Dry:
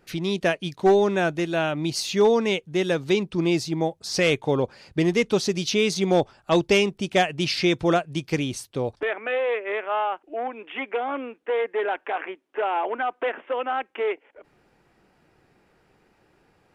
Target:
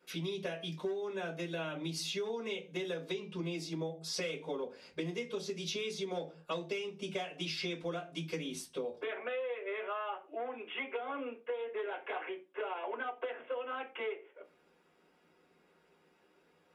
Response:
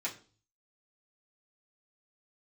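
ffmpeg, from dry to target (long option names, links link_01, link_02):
-filter_complex "[1:a]atrim=start_sample=2205,asetrate=66150,aresample=44100[link_01];[0:a][link_01]afir=irnorm=-1:irlink=0,acompressor=threshold=-30dB:ratio=12,volume=-4.5dB"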